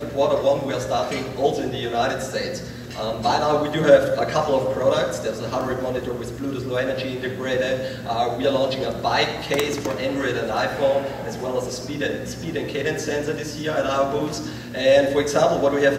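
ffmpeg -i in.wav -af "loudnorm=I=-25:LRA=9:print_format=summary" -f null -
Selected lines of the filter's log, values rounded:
Input Integrated:    -22.2 LUFS
Input True Peak:      -2.5 dBTP
Input LRA:             3.9 LU
Input Threshold:     -32.3 LUFS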